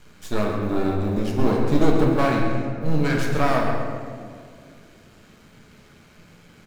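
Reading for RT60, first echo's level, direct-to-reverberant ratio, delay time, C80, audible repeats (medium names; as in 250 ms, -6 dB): 2.1 s, -9.5 dB, -2.0 dB, 134 ms, 2.0 dB, 1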